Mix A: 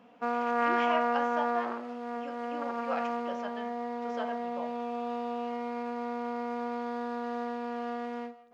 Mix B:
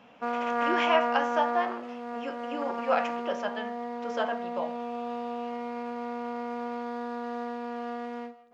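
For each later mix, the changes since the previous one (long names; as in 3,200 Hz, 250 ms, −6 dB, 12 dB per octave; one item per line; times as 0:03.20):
speech +8.5 dB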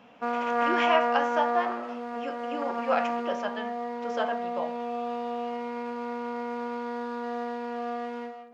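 background: send +11.0 dB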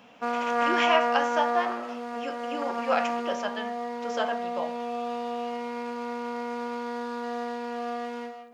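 master: add high-shelf EQ 4,200 Hz +11.5 dB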